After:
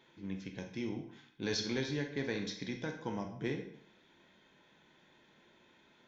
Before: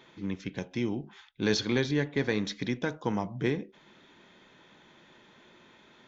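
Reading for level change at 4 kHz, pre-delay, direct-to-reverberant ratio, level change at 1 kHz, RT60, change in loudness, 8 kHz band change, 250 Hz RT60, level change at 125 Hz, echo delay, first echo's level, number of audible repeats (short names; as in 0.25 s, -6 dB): -5.5 dB, 11 ms, 4.0 dB, -8.5 dB, 0.70 s, -7.5 dB, n/a, 0.65 s, -8.5 dB, none, none, none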